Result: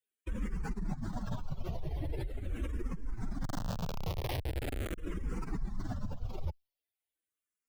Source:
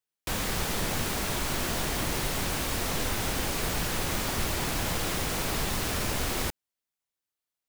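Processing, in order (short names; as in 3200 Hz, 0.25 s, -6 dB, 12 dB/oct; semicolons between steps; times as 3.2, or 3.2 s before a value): spectral contrast raised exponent 2.6; 3.44–4.98 Schmitt trigger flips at -48.5 dBFS; endless phaser -0.42 Hz; gain -1 dB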